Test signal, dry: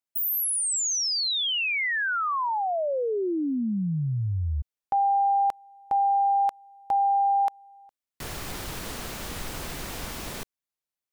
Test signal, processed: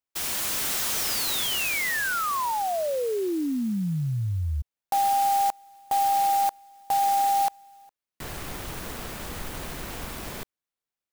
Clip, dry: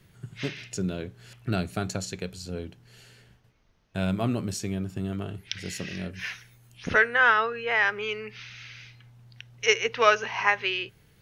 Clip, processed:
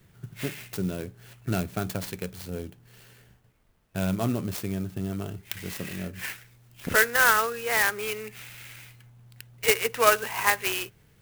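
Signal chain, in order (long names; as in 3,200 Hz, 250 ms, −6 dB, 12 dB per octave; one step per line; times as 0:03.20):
converter with an unsteady clock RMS 0.047 ms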